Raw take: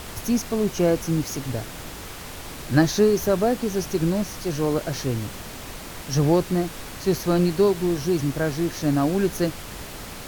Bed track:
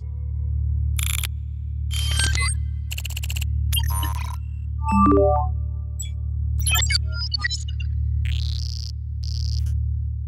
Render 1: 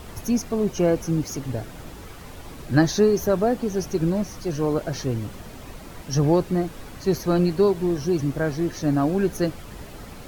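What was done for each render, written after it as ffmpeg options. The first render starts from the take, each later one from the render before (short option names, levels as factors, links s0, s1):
-af "afftdn=nr=9:nf=-37"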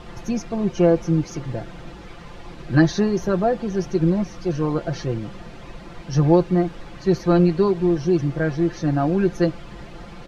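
-af "lowpass=4300,aecho=1:1:5.8:0.65"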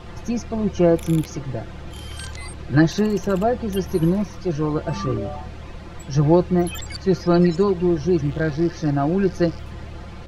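-filter_complex "[1:a]volume=0.211[s0];[0:a][s0]amix=inputs=2:normalize=0"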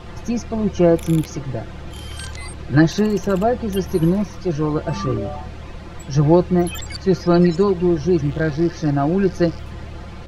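-af "volume=1.26"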